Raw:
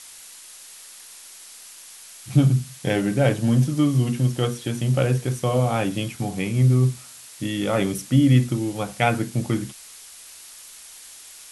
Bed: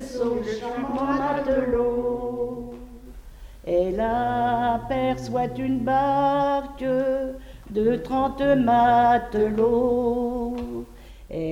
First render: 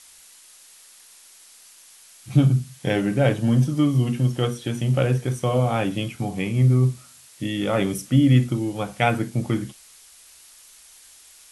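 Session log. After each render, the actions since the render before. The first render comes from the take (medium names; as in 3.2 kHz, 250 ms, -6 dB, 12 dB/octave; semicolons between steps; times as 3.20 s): noise print and reduce 6 dB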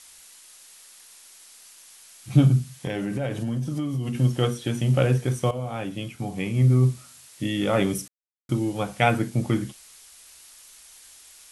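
2.72–4.15 s: compression, threshold -24 dBFS; 5.51–6.90 s: fade in, from -12.5 dB; 8.08–8.49 s: mute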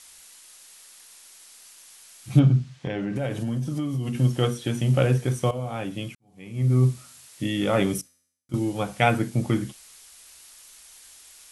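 2.39–3.16 s: distance through air 140 m; 6.15–6.79 s: fade in quadratic; 8.01–8.54 s: feedback comb 86 Hz, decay 0.74 s, mix 90%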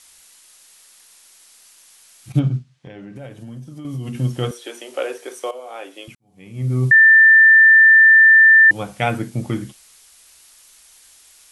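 2.32–3.85 s: upward expansion, over -36 dBFS; 4.51–6.08 s: steep high-pass 350 Hz; 6.91–8.71 s: bleep 1.78 kHz -6 dBFS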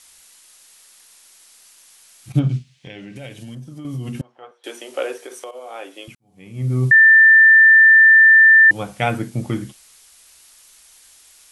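2.49–3.55 s: resonant high shelf 1.8 kHz +8.5 dB, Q 1.5; 4.21–4.64 s: ladder band-pass 930 Hz, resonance 45%; 5.20–5.65 s: compression 5:1, threshold -30 dBFS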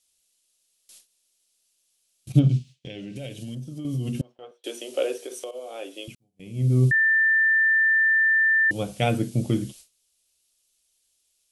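gate with hold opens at -36 dBFS; high-order bell 1.3 kHz -10.5 dB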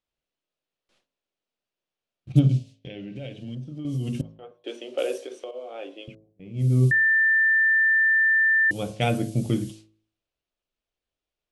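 de-hum 54.1 Hz, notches 21; level-controlled noise filter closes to 1.4 kHz, open at -22.5 dBFS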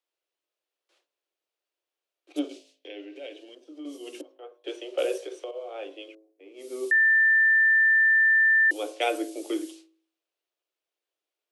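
steep high-pass 300 Hz 96 dB/octave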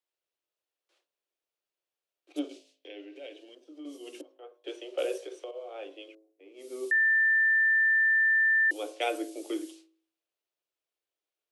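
trim -4 dB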